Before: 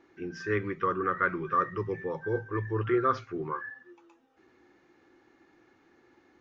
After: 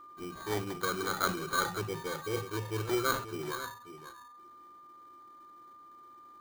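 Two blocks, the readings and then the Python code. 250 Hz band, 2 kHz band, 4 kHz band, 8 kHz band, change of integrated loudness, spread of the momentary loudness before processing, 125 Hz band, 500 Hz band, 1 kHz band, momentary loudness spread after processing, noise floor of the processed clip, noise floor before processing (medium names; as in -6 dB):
-4.0 dB, -1.5 dB, +15.0 dB, no reading, -3.5 dB, 11 LU, -4.0 dB, -4.5 dB, -4.5 dB, 22 LU, -54 dBFS, -65 dBFS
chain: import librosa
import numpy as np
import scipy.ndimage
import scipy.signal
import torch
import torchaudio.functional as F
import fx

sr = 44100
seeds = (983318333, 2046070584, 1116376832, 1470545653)

p1 = fx.block_float(x, sr, bits=5)
p2 = fx.high_shelf(p1, sr, hz=5100.0, db=6.0)
p3 = fx.sample_hold(p2, sr, seeds[0], rate_hz=2700.0, jitter_pct=0)
p4 = p3 + 10.0 ** (-44.0 / 20.0) * np.sin(2.0 * np.pi * 1200.0 * np.arange(len(p3)) / sr)
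p5 = p4 + fx.echo_single(p4, sr, ms=538, db=-11.5, dry=0)
p6 = fx.sustainer(p5, sr, db_per_s=110.0)
y = p6 * 10.0 ** (-5.0 / 20.0)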